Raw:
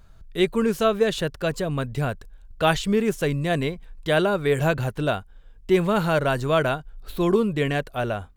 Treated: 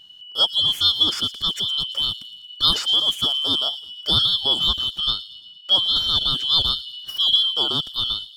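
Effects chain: four-band scrambler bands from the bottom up 2413; 4.39–6.5 high shelf 8200 Hz -7 dB; thin delay 0.114 s, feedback 54%, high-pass 4400 Hz, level -11.5 dB; gain +1.5 dB

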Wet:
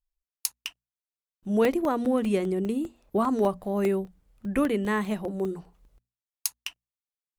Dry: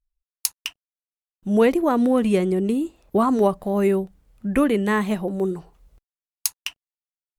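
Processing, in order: notches 60/120/180/240 Hz; crackling interface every 0.20 s, samples 64, zero; gain -5.5 dB

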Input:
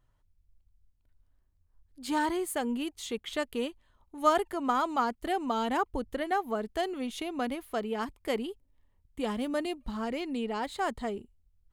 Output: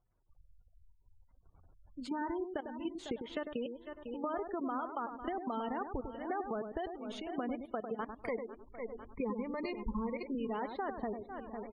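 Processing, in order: CVSD 64 kbps; random-step tremolo; level quantiser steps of 18 dB; 8.22–10.35 ripple EQ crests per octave 0.89, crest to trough 14 dB; feedback echo 0.5 s, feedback 41%, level -18.5 dB; compressor 6:1, threshold -48 dBFS, peak gain reduction 18 dB; high shelf 4400 Hz -11.5 dB; darkening echo 0.1 s, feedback 16%, low-pass 1400 Hz, level -6.5 dB; spectral gate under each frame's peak -25 dB strong; gain +12.5 dB

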